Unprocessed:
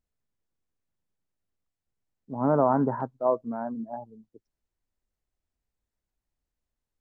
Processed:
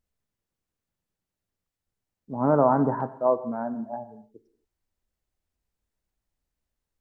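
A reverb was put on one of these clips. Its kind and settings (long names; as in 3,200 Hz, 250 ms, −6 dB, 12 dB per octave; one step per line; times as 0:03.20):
reverb whose tail is shaped and stops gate 290 ms falling, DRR 11 dB
level +2 dB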